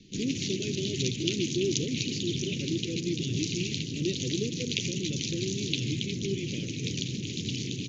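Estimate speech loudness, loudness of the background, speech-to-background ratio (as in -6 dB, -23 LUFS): -35.0 LUFS, -32.5 LUFS, -2.5 dB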